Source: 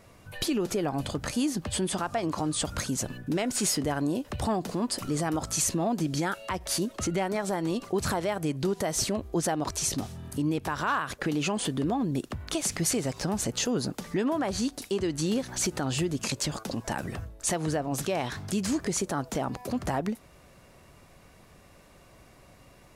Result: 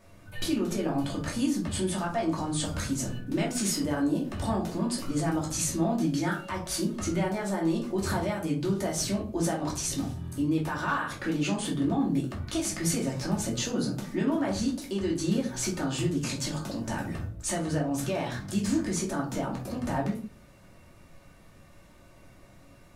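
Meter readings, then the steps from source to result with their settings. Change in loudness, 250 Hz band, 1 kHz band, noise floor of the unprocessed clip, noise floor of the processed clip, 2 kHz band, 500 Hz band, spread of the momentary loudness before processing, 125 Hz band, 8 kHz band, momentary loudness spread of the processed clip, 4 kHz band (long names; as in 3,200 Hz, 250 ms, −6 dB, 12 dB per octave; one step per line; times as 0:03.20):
0.0 dB, +1.5 dB, −2.0 dB, −55 dBFS, −54 dBFS, −0.5 dB, −1.5 dB, 5 LU, +1.5 dB, −2.5 dB, 5 LU, −2.5 dB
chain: rectangular room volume 230 cubic metres, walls furnished, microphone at 2.6 metres
level −6.5 dB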